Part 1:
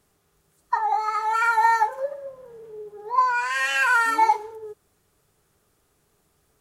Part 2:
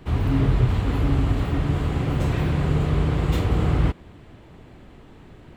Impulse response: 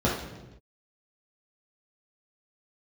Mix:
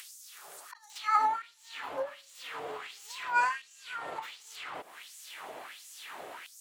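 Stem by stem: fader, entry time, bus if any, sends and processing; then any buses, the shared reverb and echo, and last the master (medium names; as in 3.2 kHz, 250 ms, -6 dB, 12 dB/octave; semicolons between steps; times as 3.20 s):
-2.5 dB, 0.00 s, no send, inverted gate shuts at -14 dBFS, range -28 dB; endings held to a fixed fall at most 120 dB/s
-6.0 dB, 0.90 s, no send, compression 6:1, threshold -29 dBFS, peak gain reduction 14.5 dB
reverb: none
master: LFO high-pass sine 1.4 Hz 610–6800 Hz; upward compressor, threshold -32 dBFS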